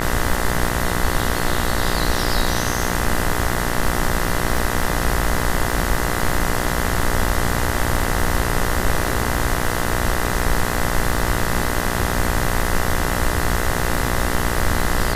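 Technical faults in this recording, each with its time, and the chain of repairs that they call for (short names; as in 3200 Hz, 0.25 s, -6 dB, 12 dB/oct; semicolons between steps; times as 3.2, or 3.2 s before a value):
buzz 60 Hz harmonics 34 -24 dBFS
crackle 40/s -25 dBFS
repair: de-click; de-hum 60 Hz, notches 34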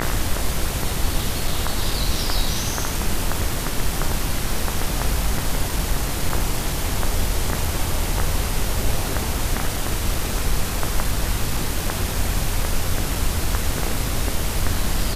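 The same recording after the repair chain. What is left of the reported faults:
none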